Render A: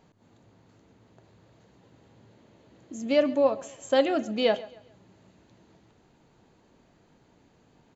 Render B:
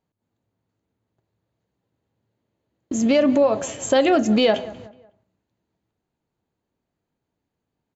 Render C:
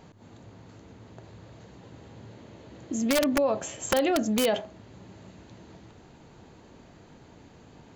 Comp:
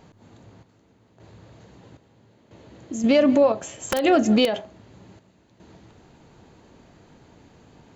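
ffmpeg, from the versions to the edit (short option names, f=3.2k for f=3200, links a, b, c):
-filter_complex "[0:a]asplit=3[a][b][c];[1:a]asplit=2[d][e];[2:a]asplit=6[f][g][h][i][j][k];[f]atrim=end=0.632[l];[a]atrim=start=0.628:end=1.202[m];[g]atrim=start=1.198:end=1.972[n];[b]atrim=start=1.968:end=2.512[o];[h]atrim=start=2.508:end=3.042[p];[d]atrim=start=3.038:end=3.522[q];[i]atrim=start=3.518:end=4.042[r];[e]atrim=start=4.038:end=4.452[s];[j]atrim=start=4.448:end=5.192[t];[c]atrim=start=5.188:end=5.602[u];[k]atrim=start=5.598[v];[l][m]acrossfade=d=0.004:c1=hsin:c2=hsin[w];[w][n]acrossfade=d=0.004:c1=hsin:c2=hsin[x];[x][o]acrossfade=d=0.004:c1=hsin:c2=hsin[y];[y][p]acrossfade=d=0.004:c1=hsin:c2=hsin[z];[z][q]acrossfade=d=0.004:c1=hsin:c2=hsin[aa];[aa][r]acrossfade=d=0.004:c1=hsin:c2=hsin[ab];[ab][s]acrossfade=d=0.004:c1=hsin:c2=hsin[ac];[ac][t]acrossfade=d=0.004:c1=hsin:c2=hsin[ad];[ad][u]acrossfade=d=0.004:c1=hsin:c2=hsin[ae];[ae][v]acrossfade=d=0.004:c1=hsin:c2=hsin"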